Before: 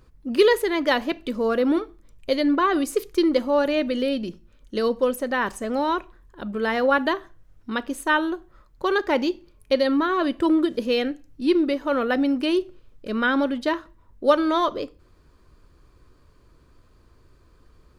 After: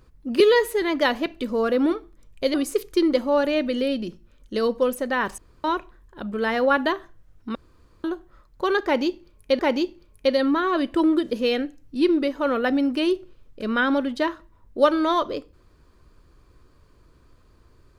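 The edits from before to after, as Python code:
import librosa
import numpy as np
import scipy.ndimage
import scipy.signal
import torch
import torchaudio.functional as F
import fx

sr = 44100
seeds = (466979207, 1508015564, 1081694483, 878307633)

y = fx.edit(x, sr, fx.stretch_span(start_s=0.4, length_s=0.28, factor=1.5),
    fx.cut(start_s=2.4, length_s=0.35),
    fx.room_tone_fill(start_s=5.59, length_s=0.26),
    fx.room_tone_fill(start_s=7.76, length_s=0.49),
    fx.repeat(start_s=9.05, length_s=0.75, count=2), tone=tone)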